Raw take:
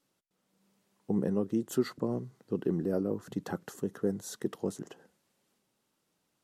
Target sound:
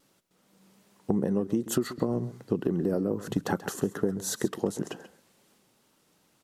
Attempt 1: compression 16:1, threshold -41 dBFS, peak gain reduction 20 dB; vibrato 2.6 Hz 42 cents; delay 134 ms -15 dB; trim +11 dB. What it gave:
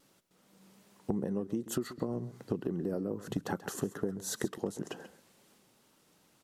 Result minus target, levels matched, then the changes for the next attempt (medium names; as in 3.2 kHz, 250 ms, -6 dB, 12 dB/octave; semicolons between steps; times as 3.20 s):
compression: peak gain reduction +7 dB
change: compression 16:1, threshold -33.5 dBFS, peak gain reduction 13 dB